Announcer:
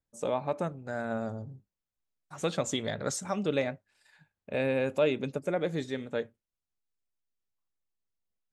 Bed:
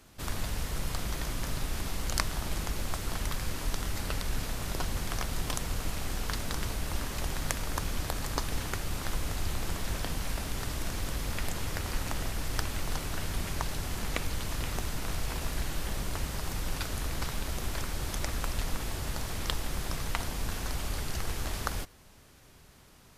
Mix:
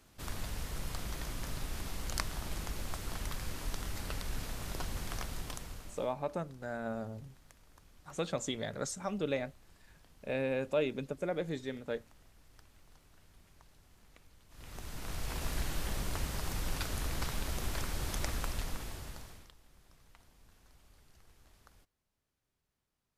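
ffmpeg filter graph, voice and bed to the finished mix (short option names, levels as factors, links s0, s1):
-filter_complex "[0:a]adelay=5750,volume=0.562[s0];[1:a]volume=10,afade=t=out:st=5.17:d=0.97:silence=0.0749894,afade=t=in:st=14.49:d=1.03:silence=0.0501187,afade=t=out:st=18.27:d=1.24:silence=0.0473151[s1];[s0][s1]amix=inputs=2:normalize=0"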